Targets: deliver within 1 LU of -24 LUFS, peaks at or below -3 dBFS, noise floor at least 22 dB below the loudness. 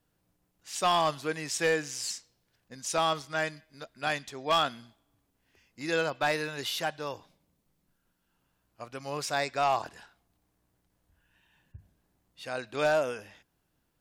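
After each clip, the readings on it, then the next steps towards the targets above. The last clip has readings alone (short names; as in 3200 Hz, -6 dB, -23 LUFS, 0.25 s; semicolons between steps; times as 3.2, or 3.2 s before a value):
clipped 0.3%; flat tops at -19.0 dBFS; loudness -30.5 LUFS; peak -19.0 dBFS; loudness target -24.0 LUFS
-> clip repair -19 dBFS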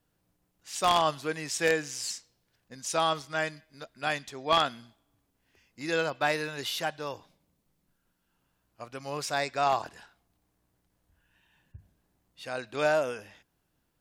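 clipped 0.0%; loudness -30.0 LUFS; peak -10.0 dBFS; loudness target -24.0 LUFS
-> gain +6 dB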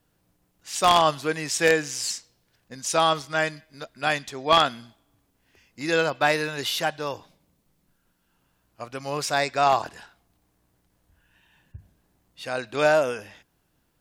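loudness -24.0 LUFS; peak -4.0 dBFS; noise floor -70 dBFS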